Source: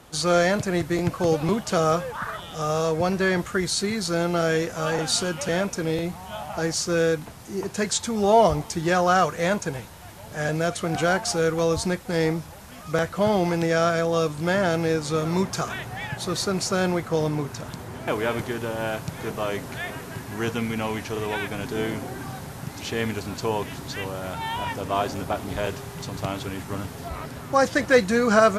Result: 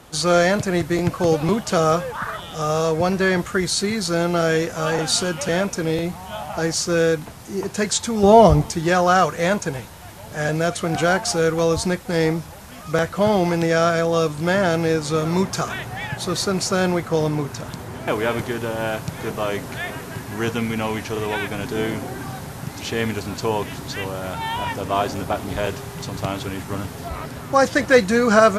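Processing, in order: 8.23–8.71 low shelf 360 Hz +9 dB; gain +3.5 dB

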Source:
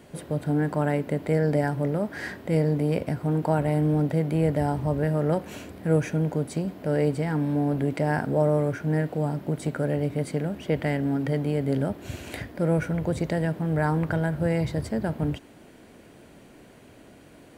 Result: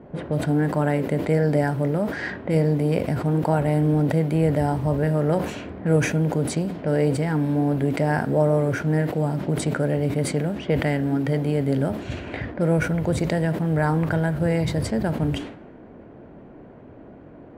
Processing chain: low-pass opened by the level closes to 890 Hz, open at -23.5 dBFS; in parallel at -2 dB: compressor, threshold -36 dBFS, peak gain reduction 18.5 dB; on the sum: flange 1.4 Hz, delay 4.7 ms, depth 4.5 ms, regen -87%; sustainer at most 80 dB/s; gain +6 dB

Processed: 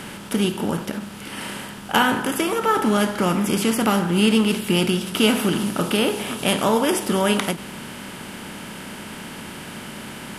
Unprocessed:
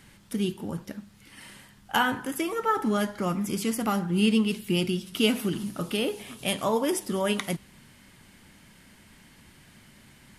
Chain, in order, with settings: per-bin compression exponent 0.6; ending taper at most 200 dB/s; gain +3.5 dB

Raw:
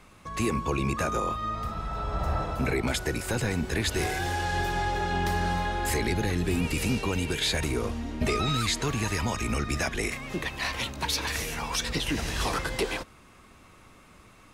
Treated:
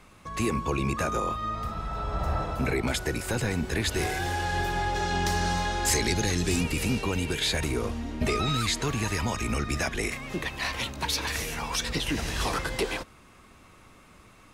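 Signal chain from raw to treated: 4.94–6.62 bell 6100 Hz +8 dB -> +14 dB 1.3 oct

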